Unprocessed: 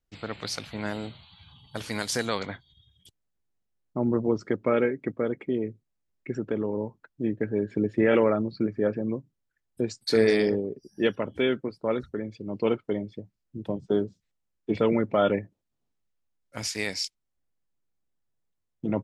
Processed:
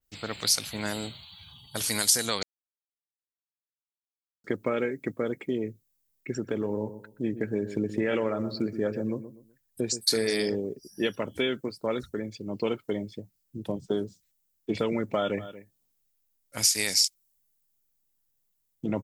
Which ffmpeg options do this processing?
-filter_complex "[0:a]asplit=3[a][b][c];[a]afade=t=out:st=6.43:d=0.02[d];[b]asplit=2[e][f];[f]adelay=124,lowpass=f=970:p=1,volume=-12dB,asplit=2[g][h];[h]adelay=124,lowpass=f=970:p=1,volume=0.33,asplit=2[i][j];[j]adelay=124,lowpass=f=970:p=1,volume=0.33[k];[e][g][i][k]amix=inputs=4:normalize=0,afade=t=in:st=6.43:d=0.02,afade=t=out:st=10:d=0.02[l];[c]afade=t=in:st=10:d=0.02[m];[d][l][m]amix=inputs=3:normalize=0,asplit=3[n][o][p];[n]afade=t=out:st=15.22:d=0.02[q];[o]aecho=1:1:234:0.1,afade=t=in:st=15.22:d=0.02,afade=t=out:st=17.01:d=0.02[r];[p]afade=t=in:st=17.01:d=0.02[s];[q][r][s]amix=inputs=3:normalize=0,asplit=3[t][u][v];[t]atrim=end=2.43,asetpts=PTS-STARTPTS,afade=t=out:st=2.426:d=0.004:c=hsin[w];[u]atrim=start=2.43:end=4.44,asetpts=PTS-STARTPTS,volume=0[x];[v]atrim=start=4.44,asetpts=PTS-STARTPTS,afade=t=in:d=0.004:c=hsin[y];[w][x][y]concat=n=3:v=0:a=1,aemphasis=mode=production:type=75fm,acompressor=threshold=-23dB:ratio=6,adynamicequalizer=threshold=0.00501:dfrequency=4300:dqfactor=0.7:tfrequency=4300:tqfactor=0.7:attack=5:release=100:ratio=0.375:range=3:mode=boostabove:tftype=highshelf"

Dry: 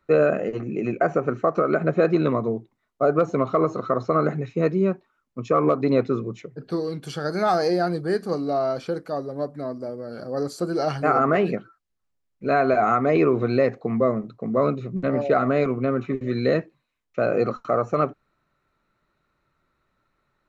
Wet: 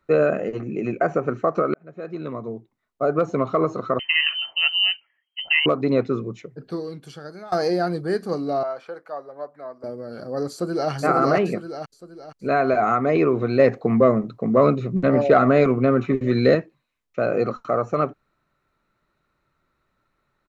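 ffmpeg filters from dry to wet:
-filter_complex "[0:a]asettb=1/sr,asplit=3[a][b][c];[a]atrim=end=3.994[d];[b]atrim=start=3.99:end=5.66,asetpts=PTS-STARTPTS,afade=t=in:d=0.004:c=qsin,afade=t=out:st=1.666:d=0.004:c=qsin,lowpass=f=2.7k:t=q:w=0.5098,lowpass=f=2.7k:t=q:w=0.6013,lowpass=f=2.7k:t=q:w=0.9,lowpass=f=2.7k:t=q:w=2.563,afreqshift=-3200[e];[c]atrim=start=5.656[f];[d][e]acrossfade=d=0.004:c1=hsin:c2=qsin[g];[g][f]acrossfade=d=0.004:c1=qsin:c2=hsin,asettb=1/sr,asplit=3[h][i][j];[h]atrim=end=8.634[k];[i]atrim=start=8.63:end=9.84,asetpts=PTS-STARTPTS,afade=t=in:d=0.004:c=qsin,afade=t=out:st=1.206:d=0.004:c=qsin,acrossover=split=550 2300:gain=0.0891 1 0.2[l][m][n];[l][m][n]amix=inputs=3:normalize=0[o];[j]atrim=start=9.836[p];[k][o]acrossfade=d=0.004:c1=hsin:c2=qsin[q];[q][p]acrossfade=d=0.004:c1=qsin:c2=hsin,asplit=2[r][s];[s]afade=t=in:st=10.51:d=0.01,afade=t=out:st=10.91:d=0.01,aecho=0:1:470|940|1410|1880|2350:0.891251|0.3565|0.1426|0.0570401|0.022816[t];[r][t]amix=inputs=2:normalize=0,asettb=1/sr,asplit=3[u][v][w];[u]atrim=end=13.594[x];[v]atrim=start=13.59:end=16.55,asetpts=PTS-STARTPTS,afade=t=in:d=0.004:c=qsin,afade=t=out:st=2.956:d=0.004:c=qsin,acontrast=33[y];[w]atrim=start=16.546[z];[x][y]acrossfade=d=0.004:c1=hsin:c2=qsin[aa];[aa][z]acrossfade=d=0.004:c1=qsin:c2=hsin,asplit=3[ab][ac][ad];[ab]atrim=end=1.74,asetpts=PTS-STARTPTS,afade=t=out:st=1.736:d=0.004:c=hsin[ae];[ac]atrim=start=1.74:end=7.52,asetpts=PTS-STARTPTS,afade=t=in:d=1.59,afade=t=out:st=4.67:d=1.11:silence=0.0794328[af];[ad]atrim=start=7.52,asetpts=PTS-STARTPTS,afade=t=in:d=0.004:c=hsin:silence=0.0794328[ag];[ae][af][ag]concat=n=3:v=0:a=1"

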